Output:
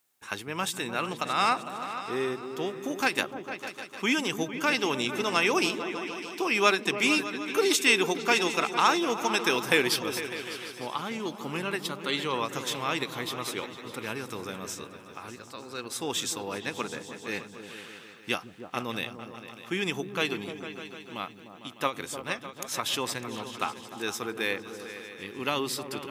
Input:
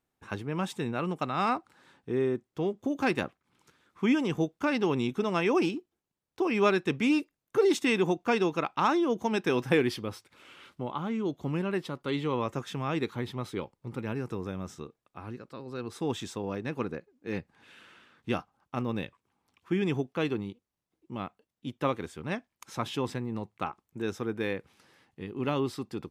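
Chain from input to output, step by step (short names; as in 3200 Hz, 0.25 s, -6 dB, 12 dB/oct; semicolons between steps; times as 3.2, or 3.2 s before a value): tilt +4 dB/oct; on a send: repeats that get brighter 0.151 s, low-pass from 200 Hz, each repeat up 2 oct, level -6 dB; on the sum: ending taper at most 260 dB/s; gain +3 dB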